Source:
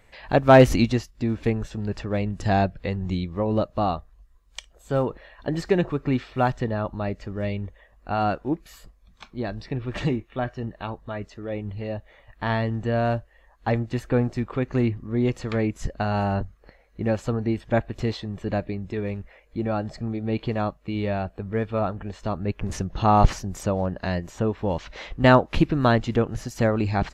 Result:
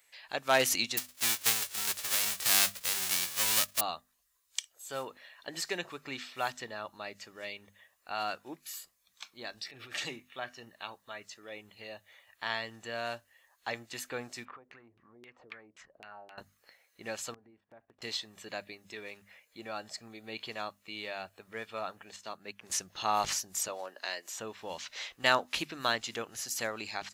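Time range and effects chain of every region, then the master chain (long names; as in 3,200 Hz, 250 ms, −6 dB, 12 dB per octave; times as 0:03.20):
0:00.97–0:03.79: spectral envelope flattened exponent 0.1 + RIAA equalisation playback
0:09.59–0:10.04: Butterworth band-reject 1,000 Hz, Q 4.6 + transient designer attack −10 dB, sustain +7 dB
0:14.45–0:16.38: downward compressor, threshold −37 dBFS + auto-filter low-pass saw down 3.8 Hz 380–2,700 Hz
0:17.34–0:18.02: low-pass filter 1,000 Hz + noise gate −37 dBFS, range −13 dB + downward compressor 8 to 1, threshold −36 dBFS
0:22.16–0:22.70: high-pass filter 130 Hz + expander for the loud parts, over −37 dBFS
0:23.68–0:24.36: high-pass filter 290 Hz 24 dB per octave + double-tracking delay 16 ms −14 dB
whole clip: first difference; mains-hum notches 50/100/150/200/250 Hz; automatic gain control gain up to 4.5 dB; level +3 dB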